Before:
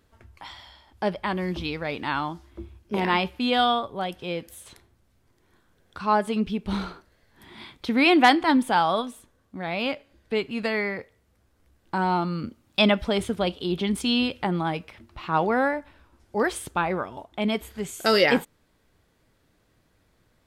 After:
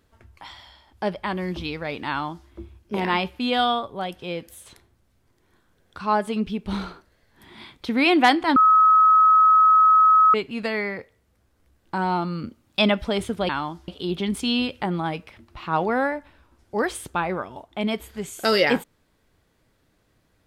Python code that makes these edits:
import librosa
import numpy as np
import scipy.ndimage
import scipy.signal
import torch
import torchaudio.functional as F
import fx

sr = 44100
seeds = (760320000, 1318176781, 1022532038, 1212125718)

y = fx.edit(x, sr, fx.duplicate(start_s=2.09, length_s=0.39, to_s=13.49),
    fx.bleep(start_s=8.56, length_s=1.78, hz=1280.0, db=-11.5), tone=tone)